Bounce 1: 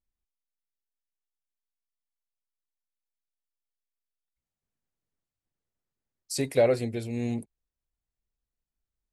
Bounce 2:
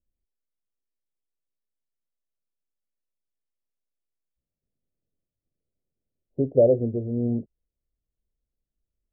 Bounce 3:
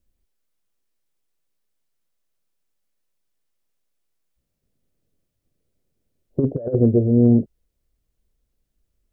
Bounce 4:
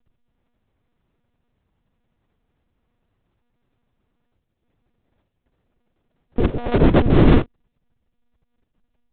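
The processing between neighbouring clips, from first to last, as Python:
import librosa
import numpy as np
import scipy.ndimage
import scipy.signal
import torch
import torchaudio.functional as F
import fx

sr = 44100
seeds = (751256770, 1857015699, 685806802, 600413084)

y1 = scipy.signal.sosfilt(scipy.signal.butter(8, 640.0, 'lowpass', fs=sr, output='sos'), x)
y1 = y1 * librosa.db_to_amplitude(5.0)
y2 = fx.over_compress(y1, sr, threshold_db=-24.0, ratio=-0.5)
y2 = y2 * librosa.db_to_amplitude(8.5)
y3 = fx.cycle_switch(y2, sr, every=3, mode='inverted')
y3 = fx.lpc_monotone(y3, sr, seeds[0], pitch_hz=240.0, order=10)
y3 = y3 * librosa.db_to_amplitude(2.5)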